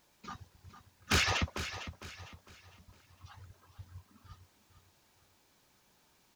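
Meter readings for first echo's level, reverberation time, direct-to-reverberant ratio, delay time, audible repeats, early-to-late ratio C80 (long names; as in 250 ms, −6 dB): −11.5 dB, no reverb audible, no reverb audible, 455 ms, 3, no reverb audible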